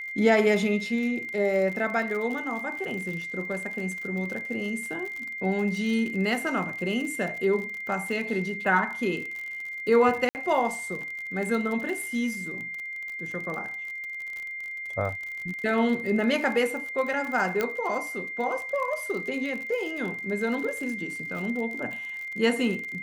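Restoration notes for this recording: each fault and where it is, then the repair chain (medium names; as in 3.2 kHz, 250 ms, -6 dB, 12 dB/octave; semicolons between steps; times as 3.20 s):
crackle 49 per s -33 dBFS
whine 2.1 kHz -33 dBFS
10.29–10.35 s: dropout 59 ms
17.61 s: pop -12 dBFS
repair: de-click; band-stop 2.1 kHz, Q 30; interpolate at 10.29 s, 59 ms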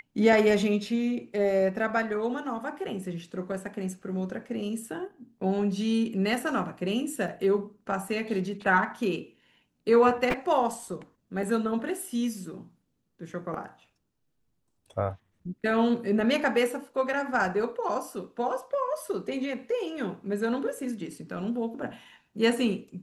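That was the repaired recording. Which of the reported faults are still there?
17.61 s: pop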